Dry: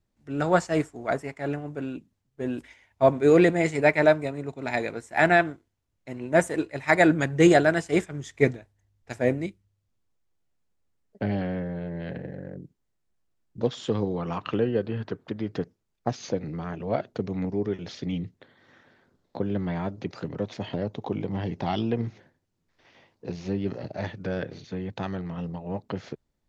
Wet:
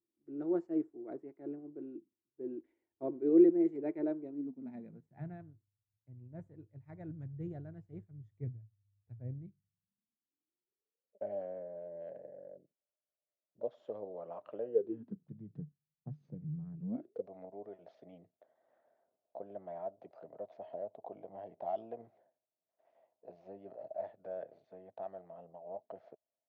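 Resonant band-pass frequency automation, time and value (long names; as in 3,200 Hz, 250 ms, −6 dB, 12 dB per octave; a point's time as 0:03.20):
resonant band-pass, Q 9.5
0:04.23 340 Hz
0:05.43 110 Hz
0:09.25 110 Hz
0:11.24 600 Hz
0:14.65 600 Hz
0:15.28 150 Hz
0:16.78 150 Hz
0:17.28 650 Hz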